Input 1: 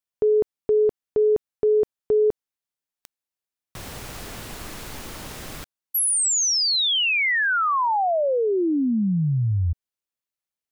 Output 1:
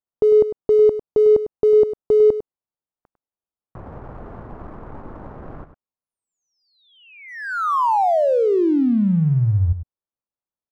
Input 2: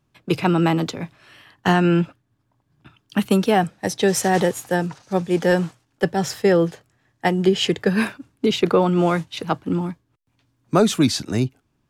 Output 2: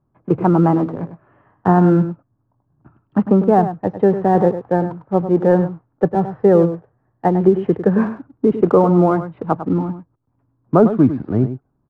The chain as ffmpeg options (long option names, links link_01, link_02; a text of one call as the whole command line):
ffmpeg -i in.wav -filter_complex "[0:a]lowpass=frequency=1200:width=0.5412,lowpass=frequency=1200:width=1.3066,asplit=2[link_01][link_02];[link_02]aeval=exprs='sgn(val(0))*max(abs(val(0))-0.0133,0)':channel_layout=same,volume=-6dB[link_03];[link_01][link_03]amix=inputs=2:normalize=0,aecho=1:1:101:0.282,volume=1dB" out.wav